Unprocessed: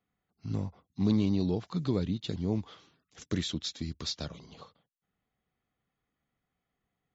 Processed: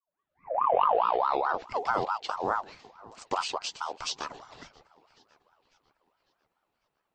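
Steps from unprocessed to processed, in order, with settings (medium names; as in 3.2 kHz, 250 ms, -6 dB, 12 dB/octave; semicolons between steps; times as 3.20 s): tape start-up on the opening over 1.84 s; tape echo 550 ms, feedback 57%, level -20 dB, low-pass 4.8 kHz; ring modulator with a swept carrier 860 Hz, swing 35%, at 4.7 Hz; trim +4 dB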